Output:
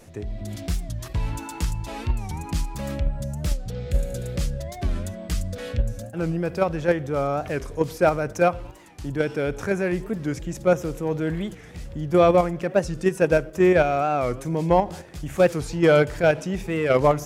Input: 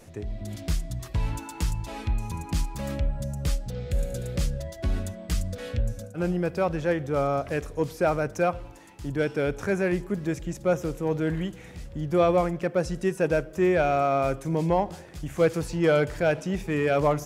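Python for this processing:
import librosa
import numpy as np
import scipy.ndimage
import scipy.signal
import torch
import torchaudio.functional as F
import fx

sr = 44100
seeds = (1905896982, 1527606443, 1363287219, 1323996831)

p1 = fx.level_steps(x, sr, step_db=22)
p2 = x + (p1 * librosa.db_to_amplitude(0.0))
y = fx.record_warp(p2, sr, rpm=45.0, depth_cents=160.0)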